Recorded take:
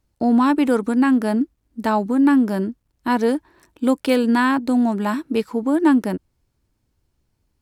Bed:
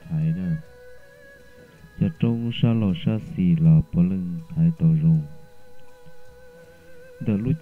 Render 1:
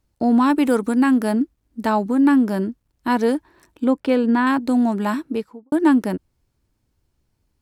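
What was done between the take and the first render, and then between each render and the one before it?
0.5–1.32 high shelf 8600 Hz +7 dB; 3.84–4.47 LPF 1700 Hz 6 dB/oct; 5.15–5.72 studio fade out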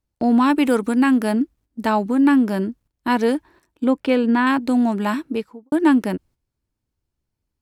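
gate -47 dBFS, range -10 dB; dynamic EQ 2600 Hz, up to +5 dB, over -42 dBFS, Q 1.5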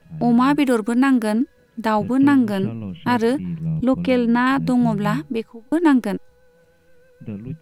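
add bed -8.5 dB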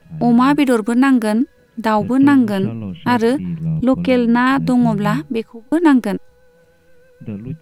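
gain +3.5 dB

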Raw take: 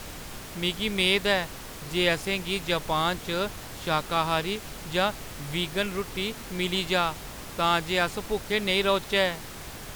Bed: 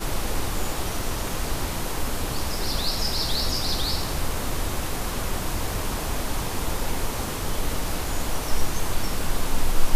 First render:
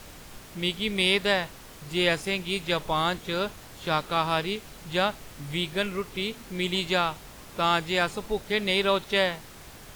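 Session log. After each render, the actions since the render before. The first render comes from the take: noise print and reduce 6 dB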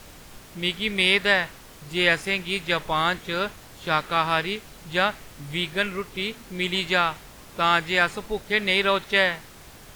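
dynamic EQ 1800 Hz, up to +8 dB, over -40 dBFS, Q 1.2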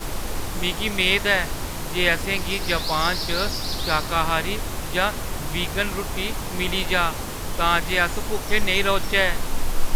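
add bed -2 dB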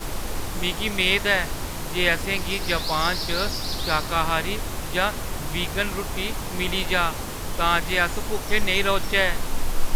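gain -1 dB

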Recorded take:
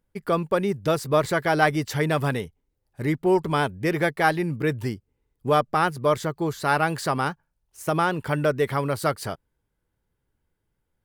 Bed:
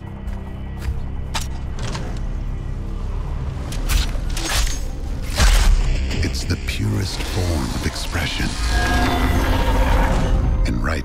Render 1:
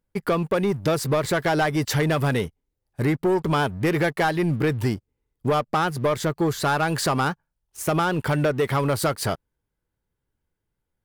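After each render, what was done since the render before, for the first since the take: compressor 6:1, threshold -23 dBFS, peak gain reduction 9.5 dB; sample leveller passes 2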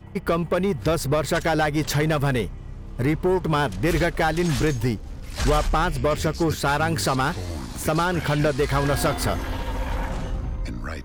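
add bed -10.5 dB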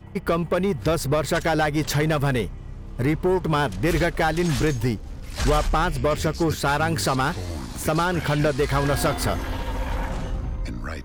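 nothing audible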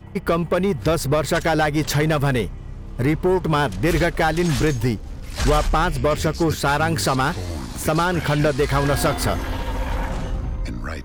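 gain +2.5 dB

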